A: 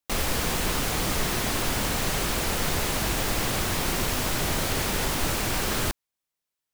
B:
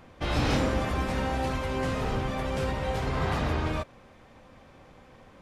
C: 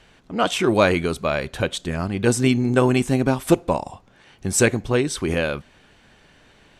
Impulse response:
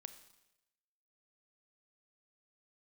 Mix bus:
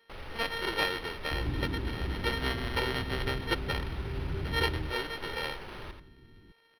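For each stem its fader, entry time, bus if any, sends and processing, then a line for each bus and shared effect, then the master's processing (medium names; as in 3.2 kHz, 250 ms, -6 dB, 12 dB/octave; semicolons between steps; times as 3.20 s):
-14.5 dB, 0.00 s, send -3.5 dB, echo send -5 dB, peak limiter -22.5 dBFS, peak gain reduction 9 dB
0.0 dB, 1.10 s, no send, no echo send, compression 1.5:1, threshold -40 dBFS, peak gain reduction 7 dB; FFT band-reject 400–9800 Hz
-18.0 dB, 0.00 s, no send, no echo send, sorted samples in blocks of 32 samples; high-pass 280 Hz; resonant high shelf 3.5 kHz +10.5 dB, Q 3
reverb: on, RT60 0.90 s, pre-delay 28 ms
echo: feedback delay 86 ms, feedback 16%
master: comb 2.2 ms, depth 39%; decimation joined by straight lines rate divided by 6×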